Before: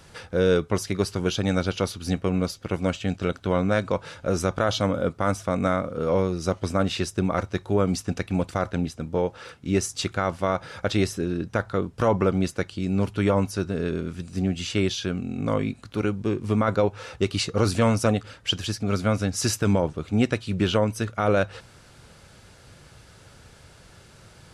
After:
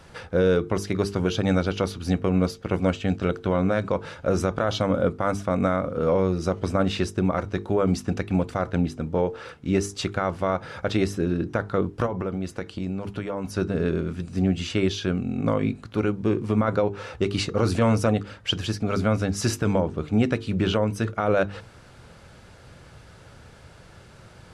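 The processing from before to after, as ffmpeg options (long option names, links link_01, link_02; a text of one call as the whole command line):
ffmpeg -i in.wav -filter_complex "[0:a]asplit=3[link_01][link_02][link_03];[link_01]afade=type=out:start_time=12.05:duration=0.02[link_04];[link_02]acompressor=threshold=-27dB:ratio=6:attack=3.2:release=140:knee=1:detection=peak,afade=type=in:start_time=12.05:duration=0.02,afade=type=out:start_time=13.44:duration=0.02[link_05];[link_03]afade=type=in:start_time=13.44:duration=0.02[link_06];[link_04][link_05][link_06]amix=inputs=3:normalize=0,highshelf=frequency=3300:gain=-9,bandreject=frequency=50:width_type=h:width=6,bandreject=frequency=100:width_type=h:width=6,bandreject=frequency=150:width_type=h:width=6,bandreject=frequency=200:width_type=h:width=6,bandreject=frequency=250:width_type=h:width=6,bandreject=frequency=300:width_type=h:width=6,bandreject=frequency=350:width_type=h:width=6,bandreject=frequency=400:width_type=h:width=6,bandreject=frequency=450:width_type=h:width=6,alimiter=limit=-15dB:level=0:latency=1:release=97,volume=3.5dB" out.wav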